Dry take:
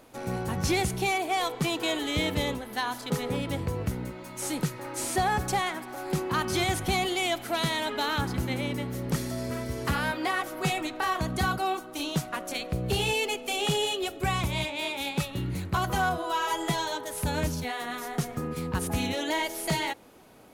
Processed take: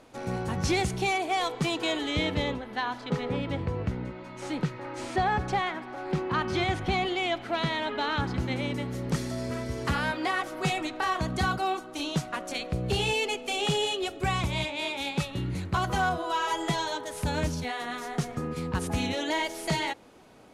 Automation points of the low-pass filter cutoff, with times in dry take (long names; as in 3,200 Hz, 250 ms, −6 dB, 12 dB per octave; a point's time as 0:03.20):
0:01.73 7,700 Hz
0:02.67 3,500 Hz
0:07.99 3,500 Hz
0:08.84 8,100 Hz